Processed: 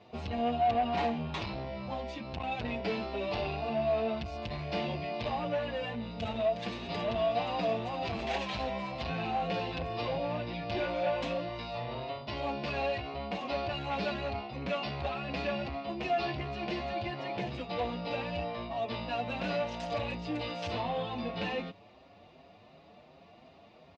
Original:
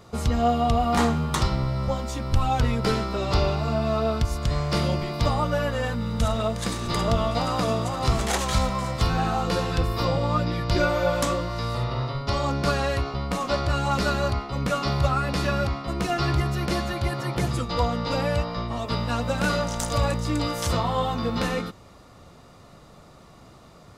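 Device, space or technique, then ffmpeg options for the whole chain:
barber-pole flanger into a guitar amplifier: -filter_complex "[0:a]asplit=2[link_01][link_02];[link_02]adelay=6.4,afreqshift=2.7[link_03];[link_01][link_03]amix=inputs=2:normalize=1,asoftclip=type=tanh:threshold=-23dB,highpass=98,equalizer=frequency=130:width_type=q:width=4:gain=-9,equalizer=frequency=690:width_type=q:width=4:gain=8,equalizer=frequency=1300:width_type=q:width=4:gain=-10,equalizer=frequency=2600:width_type=q:width=4:gain=9,lowpass=frequency=4400:width=0.5412,lowpass=frequency=4400:width=1.3066,volume=-4dB"

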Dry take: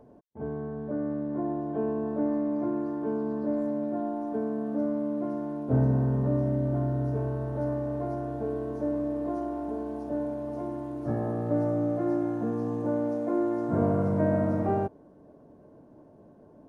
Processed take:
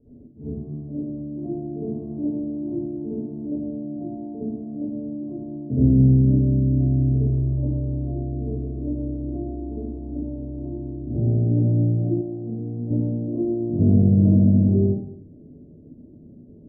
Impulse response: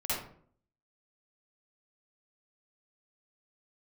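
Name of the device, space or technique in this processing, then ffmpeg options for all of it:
next room: -filter_complex "[0:a]lowpass=frequency=340:width=0.5412,lowpass=frequency=340:width=1.3066[link_01];[1:a]atrim=start_sample=2205[link_02];[link_01][link_02]afir=irnorm=-1:irlink=0,asettb=1/sr,asplit=3[link_03][link_04][link_05];[link_03]atrim=end=12.214[link_06];[link_04]atrim=start=12.21:end=12.91,asetpts=PTS-STARTPTS,afade=type=in:duration=0.004:curve=qsin,afade=type=out:start_time=0.696:duration=0.004:curve=qsin,lowshelf=frequency=420:gain=-8[link_07];[link_05]atrim=start=12.906[link_08];[link_06][link_07]acrossfade=duration=0.004:curve1=hsin:curve2=qsin[link_09];[link_09][link_08]acrossfade=duration=0.004:curve1=qsin:curve2=hsin,volume=4dB"

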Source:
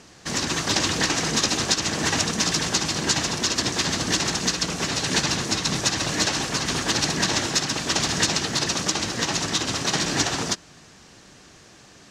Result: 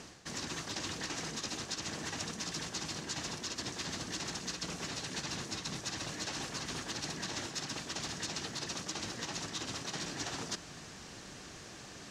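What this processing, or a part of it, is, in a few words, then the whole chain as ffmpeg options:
compression on the reversed sound: -af "areverse,acompressor=threshold=-39dB:ratio=5,areverse"

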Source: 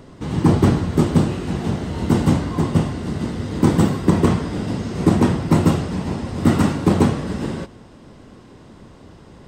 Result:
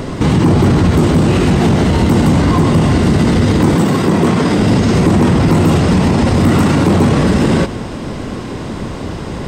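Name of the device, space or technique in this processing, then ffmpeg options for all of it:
mastering chain: -filter_complex "[0:a]equalizer=frequency=2300:width_type=o:width=0.32:gain=2.5,acompressor=threshold=-16dB:ratio=2.5,asoftclip=type=tanh:threshold=-10dB,alimiter=level_in=23.5dB:limit=-1dB:release=50:level=0:latency=1,asettb=1/sr,asplit=3[link_01][link_02][link_03];[link_01]atrim=end=3.754[link_04];[link_02]atrim=start=3.75:end=4.59,asetpts=PTS-STARTPTS,afade=type=in:duration=0.004:curve=qsin,afade=type=out:start_time=0.836:duration=0.004:curve=qsin,highpass=140[link_05];[link_03]atrim=start=4.586[link_06];[link_04][link_05]acrossfade=duration=0.004:curve1=hsin:curve2=qsin[link_07];[link_07][link_06]acrossfade=duration=0.004:curve1=qsin:curve2=hsin,volume=-3dB"

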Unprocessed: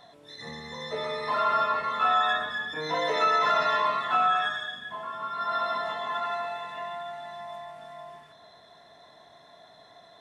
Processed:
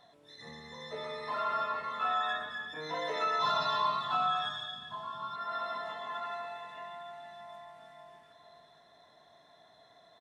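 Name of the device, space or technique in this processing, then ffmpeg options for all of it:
ducked delay: -filter_complex "[0:a]asplit=3[link_01][link_02][link_03];[link_02]adelay=463,volume=-8dB[link_04];[link_03]apad=whole_len=470407[link_05];[link_04][link_05]sidechaincompress=threshold=-44dB:ratio=8:attack=16:release=535[link_06];[link_01][link_06]amix=inputs=2:normalize=0,asettb=1/sr,asplit=3[link_07][link_08][link_09];[link_07]atrim=end=3.394[link_10];[link_08]atrim=start=3.39:end=5.36,asetpts=PTS-STARTPTS,afade=type=in:duration=0.004:curve=qsin,afade=type=out:start_time=1.966:duration=0.004:curve=qsin,equalizer=frequency=125:width_type=o:width=1:gain=12,equalizer=frequency=500:width_type=o:width=1:gain=-4,equalizer=frequency=1000:width_type=o:width=1:gain=7,equalizer=frequency=2000:width_type=o:width=1:gain=-10,equalizer=frequency=4000:width_type=o:width=1:gain=11[link_11];[link_09]atrim=start=5.356[link_12];[link_10][link_11]acrossfade=duration=0.004:curve1=hsin:curve2=qsin[link_13];[link_13][link_12]acrossfade=duration=0.004:curve1=qsin:curve2=hsin,volume=-8dB"

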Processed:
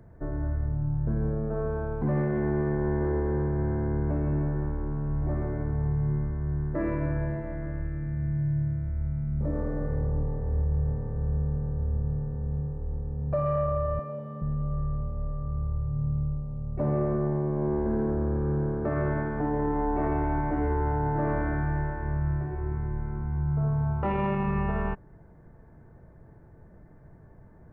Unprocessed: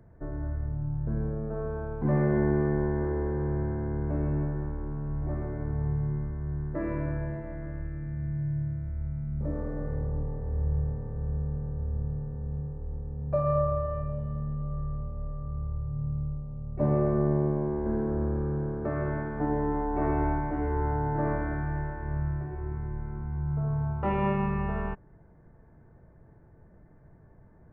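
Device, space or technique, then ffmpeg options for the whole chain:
soft clipper into limiter: -filter_complex "[0:a]asettb=1/sr,asplit=3[link_01][link_02][link_03];[link_01]atrim=end=13.994[link_04];[link_02]atrim=start=13.99:end=14.42,asetpts=PTS-STARTPTS,afade=type=in:duration=0.004:curve=qsin,afade=type=out:start_time=0.426:duration=0.004:curve=qsin,highpass=frequency=190:width=0.5412,highpass=frequency=190:width=1.3066[link_05];[link_03]atrim=start=14.416[link_06];[link_04][link_05]acrossfade=duration=0.004:curve1=hsin:curve2=qsin[link_07];[link_07][link_06]acrossfade=duration=0.004:curve1=qsin:curve2=hsin,asoftclip=type=tanh:threshold=-15dB,alimiter=limit=-23dB:level=0:latency=1:release=29,volume=3.5dB"

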